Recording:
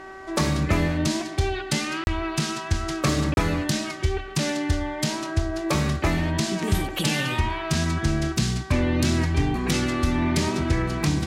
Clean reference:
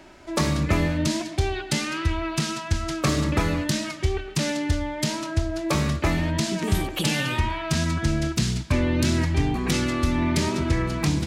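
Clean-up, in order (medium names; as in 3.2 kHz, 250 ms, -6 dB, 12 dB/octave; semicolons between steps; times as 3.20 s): de-hum 383.1 Hz, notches 5; interpolate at 2.04/3.34 s, 31 ms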